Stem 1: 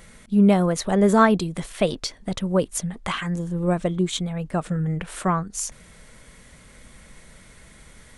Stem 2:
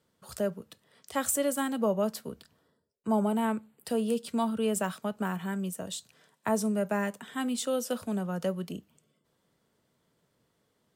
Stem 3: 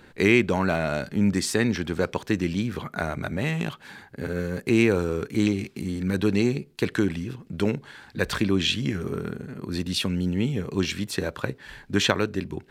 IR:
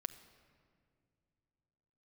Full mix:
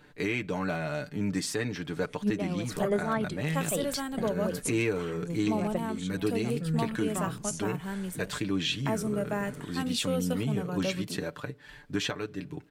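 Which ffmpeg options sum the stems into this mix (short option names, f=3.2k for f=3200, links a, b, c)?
-filter_complex "[0:a]bandreject=f=50:t=h:w=6,bandreject=f=100:t=h:w=6,bandreject=f=150:t=h:w=6,bandreject=f=200:t=h:w=6,adelay=1900,volume=-3dB[a];[1:a]adelay=2400,volume=-2dB[b];[2:a]aecho=1:1:6.8:0.66,volume=-8dB,asplit=3[c][d][e];[d]volume=-17dB[f];[e]apad=whole_len=444258[g];[a][g]sidechaincompress=threshold=-43dB:ratio=8:attack=16:release=103[h];[3:a]atrim=start_sample=2205[i];[f][i]afir=irnorm=-1:irlink=0[j];[h][b][c][j]amix=inputs=4:normalize=0,alimiter=limit=-18dB:level=0:latency=1:release=489"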